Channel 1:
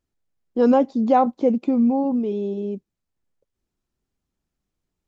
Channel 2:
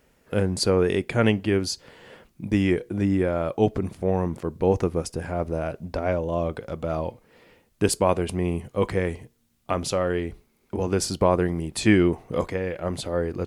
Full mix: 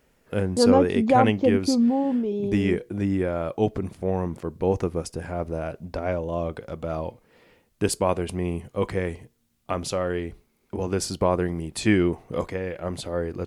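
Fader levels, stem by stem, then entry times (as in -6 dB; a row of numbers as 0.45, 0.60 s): -2.0, -2.0 dB; 0.00, 0.00 s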